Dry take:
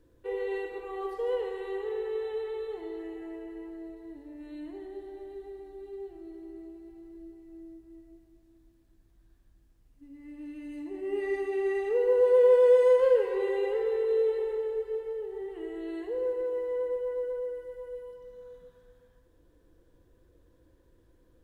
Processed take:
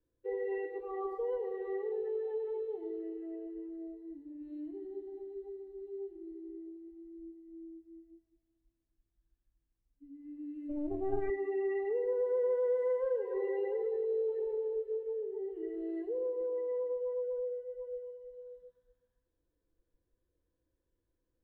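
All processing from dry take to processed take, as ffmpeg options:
ffmpeg -i in.wav -filter_complex "[0:a]asettb=1/sr,asplit=3[link_01][link_02][link_03];[link_01]atrim=end=10.694[link_04];[link_02]atrim=start=10.69:end=11.3,asetpts=PTS-STARTPTS,afade=type=in:duration=0.004:curve=qsin,afade=type=out:start_time=0.606:duration=0.004:curve=qsin,lowshelf=frequency=460:gain=10,aeval=exprs='clip(val(0),-1,0.0106)':channel_layout=same[link_05];[link_03]atrim=start=11.296[link_06];[link_04][link_05]acrossfade=duration=0.004:curve1=hsin:curve2=qsin[link_07];[link_07][link_06]acrossfade=duration=0.004:curve1=qsin:curve2=hsin,acrossover=split=2500[link_08][link_09];[link_09]acompressor=threshold=-58dB:ratio=4:attack=1:release=60[link_10];[link_08][link_10]amix=inputs=2:normalize=0,afftdn=noise_reduction=19:noise_floor=-37,acrossover=split=270|3000[link_11][link_12][link_13];[link_12]acompressor=threshold=-33dB:ratio=4[link_14];[link_11][link_14][link_13]amix=inputs=3:normalize=0,volume=-1dB" out.wav

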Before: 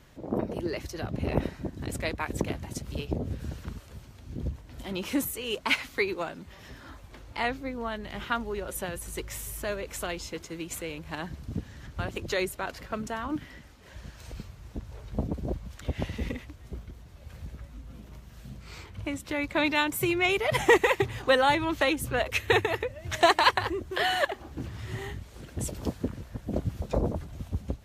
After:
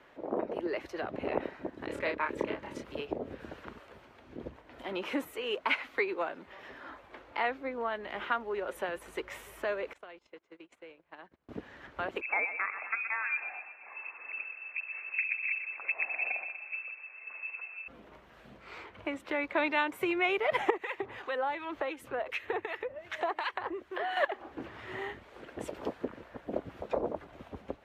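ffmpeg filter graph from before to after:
ffmpeg -i in.wav -filter_complex "[0:a]asettb=1/sr,asplit=3[link_01][link_02][link_03];[link_01]atrim=end=1.874[link_04];[link_02]atrim=start=1.87:end=2.84,asetpts=PTS-STARTPTS,afade=type=in:duration=0.004:curve=qsin,afade=type=out:start_time=0.966:duration=0.004:curve=qsin,asuperstop=centerf=730:order=4:qfactor=4.8,highshelf=frequency=9800:gain=-7,asplit=2[link_05][link_06];[link_06]adelay=29,volume=-3dB[link_07];[link_05][link_07]amix=inputs=2:normalize=0,atrim=end_sample=42777[link_08];[link_03]atrim=start=2.836[link_09];[link_04][link_08]acrossfade=duration=0.004:curve1=hsin:curve2=qsin[link_10];[link_10][link_09]acrossfade=duration=0.004:curve1=qsin:curve2=hsin,asettb=1/sr,asplit=3[link_11][link_12][link_13];[link_11]atrim=end=9.934[link_14];[link_12]atrim=start=9.93:end=11.49,asetpts=PTS-STARTPTS,afade=type=in:duration=0.004:curve=qsin,afade=type=out:start_time=1.556:duration=0.004:curve=qsin,lowpass=8600,agate=range=-26dB:threshold=-37dB:ratio=16:release=100:detection=peak,acompressor=threshold=-48dB:ratio=5:attack=3.2:release=140:knee=1:detection=peak[link_15];[link_13]atrim=start=11.486[link_16];[link_14][link_15]acrossfade=duration=0.004:curve1=hsin:curve2=qsin[link_17];[link_17][link_16]acrossfade=duration=0.004:curve1=qsin:curve2=hsin,asettb=1/sr,asplit=3[link_18][link_19][link_20];[link_18]atrim=end=12.214[link_21];[link_19]atrim=start=12.21:end=17.88,asetpts=PTS-STARTPTS,afade=type=in:duration=0.004:curve=qsin,afade=type=out:start_time=5.666:duration=0.004:curve=qsin,asplit=2[link_22][link_23];[link_23]adelay=121,lowpass=frequency=2000:poles=1,volume=-10dB,asplit=2[link_24][link_25];[link_25]adelay=121,lowpass=frequency=2000:poles=1,volume=0.49,asplit=2[link_26][link_27];[link_27]adelay=121,lowpass=frequency=2000:poles=1,volume=0.49,asplit=2[link_28][link_29];[link_29]adelay=121,lowpass=frequency=2000:poles=1,volume=0.49,asplit=2[link_30][link_31];[link_31]adelay=121,lowpass=frequency=2000:poles=1,volume=0.49[link_32];[link_22][link_24][link_26][link_28][link_30][link_32]amix=inputs=6:normalize=0,atrim=end_sample=250047,lowpass=frequency=2300:width_type=q:width=0.5098,lowpass=frequency=2300:width_type=q:width=0.6013,lowpass=frequency=2300:width_type=q:width=0.9,lowpass=frequency=2300:width_type=q:width=2.563,afreqshift=-2700[link_33];[link_20]atrim=start=17.876[link_34];[link_21][link_33]acrossfade=duration=0.004:curve1=hsin:curve2=qsin[link_35];[link_35][link_34]acrossfade=duration=0.004:curve1=qsin:curve2=hsin,asettb=1/sr,asplit=3[link_36][link_37][link_38];[link_36]atrim=end=20.704[link_39];[link_37]atrim=start=20.7:end=24.17,asetpts=PTS-STARTPTS,afade=type=in:duration=0.004:curve=qsin,afade=type=out:start_time=3.466:duration=0.004:curve=qsin,acompressor=threshold=-32dB:ratio=2:attack=3.2:release=140:knee=1:detection=peak,acrossover=split=1400[link_40][link_41];[link_40]aeval=exprs='val(0)*(1-0.7/2+0.7/2*cos(2*PI*2.7*n/s))':channel_layout=same[link_42];[link_41]aeval=exprs='val(0)*(1-0.7/2-0.7/2*cos(2*PI*2.7*n/s))':channel_layout=same[link_43];[link_42][link_43]amix=inputs=2:normalize=0[link_44];[link_38]atrim=start=24.166[link_45];[link_39][link_44]acrossfade=duration=0.004:curve1=hsin:curve2=qsin[link_46];[link_46][link_45]acrossfade=duration=0.004:curve1=qsin:curve2=hsin,acrossover=split=310 2900:gain=0.0708 1 0.0891[link_47][link_48][link_49];[link_47][link_48][link_49]amix=inputs=3:normalize=0,acompressor=threshold=-37dB:ratio=1.5,volume=3.5dB" out.wav

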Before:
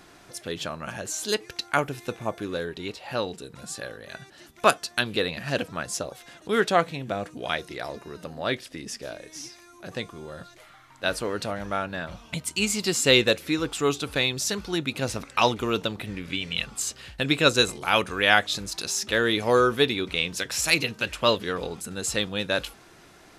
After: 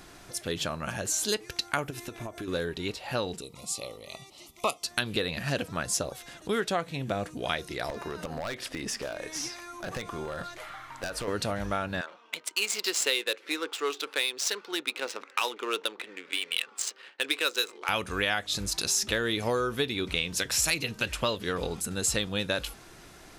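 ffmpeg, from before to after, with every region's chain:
ffmpeg -i in.wav -filter_complex "[0:a]asettb=1/sr,asplit=3[link_01][link_02][link_03];[link_01]atrim=end=1.904[link_04];[link_02]atrim=start=1.9:end=2.48,asetpts=PTS-STARTPTS,afade=type=in:duration=0.004:curve=qsin,afade=type=out:start_time=0.576:duration=0.004:curve=qsin,aecho=1:1:3:0.54,atrim=end_sample=25578,acompressor=threshold=-34dB:ratio=16:attack=3.2:release=140:knee=1:detection=peak[link_05];[link_03]atrim=start=2.476[link_06];[link_04][link_05]acrossfade=duration=0.004:curve1=hsin:curve2=qsin[link_07];[link_07][link_06]acrossfade=duration=0.004:curve1=qsin:curve2=hsin,asettb=1/sr,asplit=3[link_08][link_09][link_10];[link_08]atrim=end=3.414[link_11];[link_09]atrim=start=3.41:end=4.84,asetpts=PTS-STARTPTS,afade=type=in:duration=0.004:curve=qsin,afade=type=out:start_time=1.426:duration=0.004:curve=qsin,asuperstop=centerf=1600:order=8:qfactor=2.3,lowshelf=frequency=340:gain=-8.5[link_12];[link_10]atrim=start=4.836[link_13];[link_11][link_12]acrossfade=duration=0.004:curve1=hsin:curve2=qsin[link_14];[link_14][link_13]acrossfade=duration=0.004:curve1=qsin:curve2=hsin,asettb=1/sr,asplit=3[link_15][link_16][link_17];[link_15]atrim=end=7.894[link_18];[link_16]atrim=start=7.89:end=11.28,asetpts=PTS-STARTPTS,afade=type=in:duration=0.004:curve=qsin,afade=type=out:start_time=3.386:duration=0.004:curve=qsin,equalizer=frequency=1100:width=0.36:gain=10,acompressor=threshold=-31dB:ratio=5:attack=3.2:release=140:knee=1:detection=peak,aeval=exprs='0.0447*(abs(mod(val(0)/0.0447+3,4)-2)-1)':channel_layout=same[link_19];[link_17]atrim=start=11.276[link_20];[link_18][link_19]acrossfade=duration=0.004:curve1=hsin:curve2=qsin[link_21];[link_21][link_20]acrossfade=duration=0.004:curve1=qsin:curve2=hsin,asettb=1/sr,asplit=3[link_22][link_23][link_24];[link_22]atrim=end=12.014[link_25];[link_23]atrim=start=12.01:end=17.89,asetpts=PTS-STARTPTS,afade=type=in:duration=0.004:curve=qsin,afade=type=out:start_time=5.876:duration=0.004:curve=qsin,equalizer=frequency=670:width=2.3:gain=-10,adynamicsmooth=sensitivity=5:basefreq=1800,highpass=frequency=410:width=0.5412,highpass=frequency=410:width=1.3066[link_26];[link_24]atrim=start=17.886[link_27];[link_25][link_26]acrossfade=duration=0.004:curve1=hsin:curve2=qsin[link_28];[link_28][link_27]acrossfade=duration=0.004:curve1=qsin:curve2=hsin,lowshelf=frequency=73:gain=10,acompressor=threshold=-25dB:ratio=6,highshelf=frequency=5300:gain=5" out.wav

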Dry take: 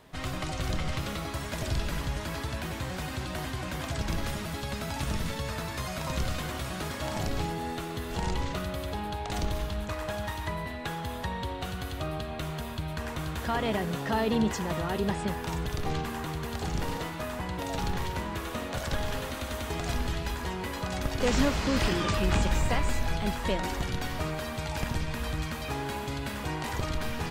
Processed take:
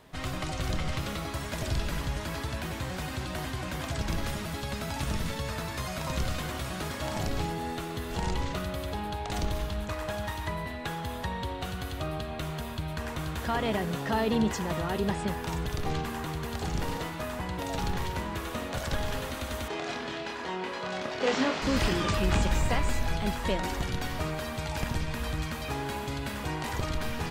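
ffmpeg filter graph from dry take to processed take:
ffmpeg -i in.wav -filter_complex "[0:a]asettb=1/sr,asplit=3[link_01][link_02][link_03];[link_01]atrim=end=19.684[link_04];[link_02]atrim=start=19.68:end=21.62,asetpts=PTS-STARTPTS,afade=type=in:duration=0.004:curve=qsin,afade=type=out:start_time=1.936:duration=0.004:curve=qsin,highpass=270,lowpass=4800,asplit=2[link_05][link_06];[link_06]adelay=27,volume=-4.5dB[link_07];[link_05][link_07]amix=inputs=2:normalize=0,atrim=end_sample=85554[link_08];[link_03]atrim=start=21.616[link_09];[link_04][link_08]acrossfade=duration=0.004:curve1=hsin:curve2=qsin[link_10];[link_10][link_09]acrossfade=duration=0.004:curve1=qsin:curve2=hsin" out.wav

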